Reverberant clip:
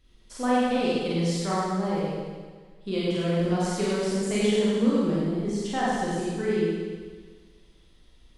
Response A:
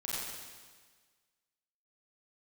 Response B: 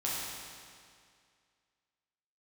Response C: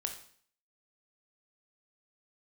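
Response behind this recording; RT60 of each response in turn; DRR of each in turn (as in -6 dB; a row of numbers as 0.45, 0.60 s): A; 1.5, 2.2, 0.55 s; -8.0, -7.0, 4.0 dB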